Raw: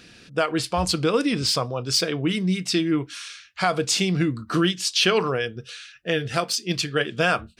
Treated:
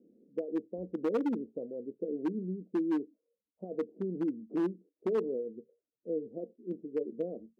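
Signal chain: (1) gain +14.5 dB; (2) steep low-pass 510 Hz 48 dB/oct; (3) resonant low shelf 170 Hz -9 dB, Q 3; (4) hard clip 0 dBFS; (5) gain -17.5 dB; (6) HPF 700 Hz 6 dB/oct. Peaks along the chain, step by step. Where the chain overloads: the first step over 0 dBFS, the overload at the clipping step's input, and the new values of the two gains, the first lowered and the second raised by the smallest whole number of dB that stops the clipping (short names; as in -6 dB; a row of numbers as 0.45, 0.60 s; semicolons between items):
+8.5, +2.0, +5.5, 0.0, -17.5, -20.0 dBFS; step 1, 5.5 dB; step 1 +8.5 dB, step 5 -11.5 dB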